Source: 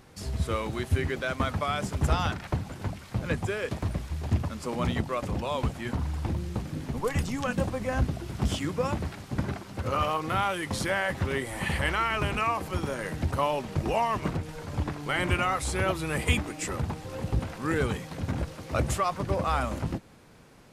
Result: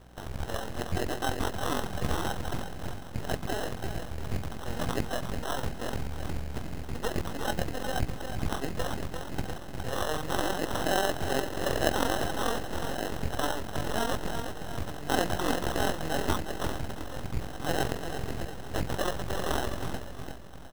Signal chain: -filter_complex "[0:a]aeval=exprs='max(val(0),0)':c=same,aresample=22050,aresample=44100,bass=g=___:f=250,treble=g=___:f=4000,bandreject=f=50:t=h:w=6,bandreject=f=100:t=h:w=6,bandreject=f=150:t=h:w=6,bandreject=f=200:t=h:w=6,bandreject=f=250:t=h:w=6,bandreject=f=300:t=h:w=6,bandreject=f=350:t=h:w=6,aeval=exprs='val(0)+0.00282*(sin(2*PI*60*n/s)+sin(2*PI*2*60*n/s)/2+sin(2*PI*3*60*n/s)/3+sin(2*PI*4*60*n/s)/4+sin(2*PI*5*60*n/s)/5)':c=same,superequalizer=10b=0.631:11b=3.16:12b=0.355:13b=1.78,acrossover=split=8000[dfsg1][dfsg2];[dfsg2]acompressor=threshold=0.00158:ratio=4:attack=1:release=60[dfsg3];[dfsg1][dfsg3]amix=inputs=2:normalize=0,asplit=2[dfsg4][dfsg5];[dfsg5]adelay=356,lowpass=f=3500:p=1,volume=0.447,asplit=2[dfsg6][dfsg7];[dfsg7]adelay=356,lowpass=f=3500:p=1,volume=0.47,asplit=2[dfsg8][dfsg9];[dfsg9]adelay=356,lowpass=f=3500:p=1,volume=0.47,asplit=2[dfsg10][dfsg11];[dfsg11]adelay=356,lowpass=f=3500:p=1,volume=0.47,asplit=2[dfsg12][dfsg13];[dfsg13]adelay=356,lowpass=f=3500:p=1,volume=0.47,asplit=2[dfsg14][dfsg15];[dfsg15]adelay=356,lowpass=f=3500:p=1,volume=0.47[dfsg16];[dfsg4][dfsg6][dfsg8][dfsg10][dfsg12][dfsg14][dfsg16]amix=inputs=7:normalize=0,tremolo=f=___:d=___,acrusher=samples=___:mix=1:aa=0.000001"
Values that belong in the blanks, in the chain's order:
1, 13, 44, 0.519, 19